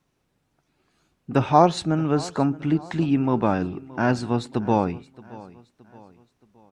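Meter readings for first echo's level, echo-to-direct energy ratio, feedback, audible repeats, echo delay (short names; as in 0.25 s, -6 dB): -20.0 dB, -19.0 dB, 44%, 3, 0.622 s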